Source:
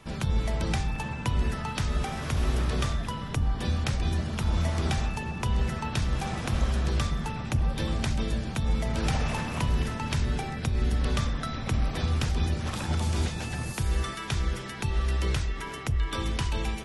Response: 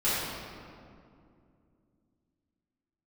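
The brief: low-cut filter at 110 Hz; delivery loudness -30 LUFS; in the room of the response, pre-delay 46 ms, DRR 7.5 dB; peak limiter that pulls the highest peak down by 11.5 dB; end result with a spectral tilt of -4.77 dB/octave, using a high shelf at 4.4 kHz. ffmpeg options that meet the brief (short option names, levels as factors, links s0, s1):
-filter_complex "[0:a]highpass=110,highshelf=f=4400:g=3.5,alimiter=limit=0.0631:level=0:latency=1,asplit=2[s0][s1];[1:a]atrim=start_sample=2205,adelay=46[s2];[s1][s2]afir=irnorm=-1:irlink=0,volume=0.1[s3];[s0][s3]amix=inputs=2:normalize=0,volume=1.5"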